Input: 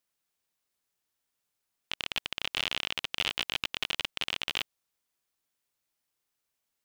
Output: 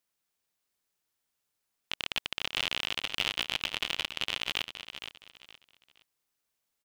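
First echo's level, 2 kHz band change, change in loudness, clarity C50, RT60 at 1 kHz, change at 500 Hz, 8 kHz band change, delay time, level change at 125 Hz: -10.0 dB, +0.5 dB, 0.0 dB, no reverb, no reverb, +0.5 dB, +0.5 dB, 468 ms, +0.5 dB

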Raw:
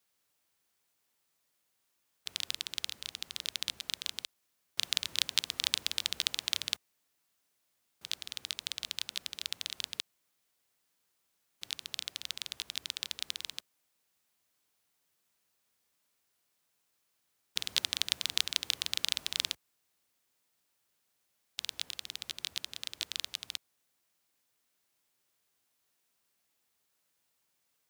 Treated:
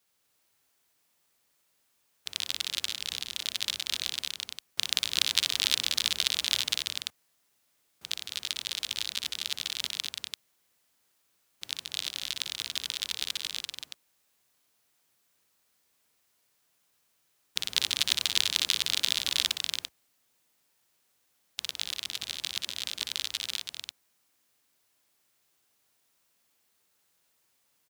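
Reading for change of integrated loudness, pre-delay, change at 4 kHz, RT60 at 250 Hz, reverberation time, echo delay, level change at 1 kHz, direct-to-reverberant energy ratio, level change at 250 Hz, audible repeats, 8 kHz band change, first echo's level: +5.0 dB, no reverb, +5.5 dB, no reverb, no reverb, 60 ms, +5.5 dB, no reverb, +5.5 dB, 3, +5.5 dB, -7.0 dB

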